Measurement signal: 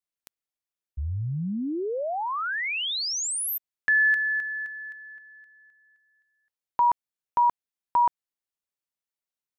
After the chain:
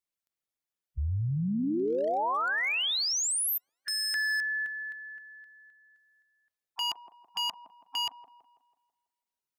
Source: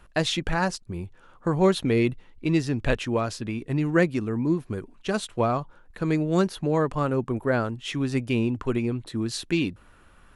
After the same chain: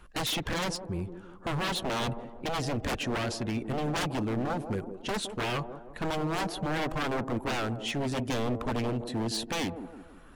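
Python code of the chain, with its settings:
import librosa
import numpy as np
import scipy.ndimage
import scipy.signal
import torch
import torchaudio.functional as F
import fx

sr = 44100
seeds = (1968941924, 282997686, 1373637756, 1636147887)

p1 = fx.spec_quant(x, sr, step_db=15)
p2 = 10.0 ** (-25.5 / 20.0) * (np.abs((p1 / 10.0 ** (-25.5 / 20.0) + 3.0) % 4.0 - 2.0) - 1.0)
y = p2 + fx.echo_wet_bandpass(p2, sr, ms=164, feedback_pct=45, hz=400.0, wet_db=-7.0, dry=0)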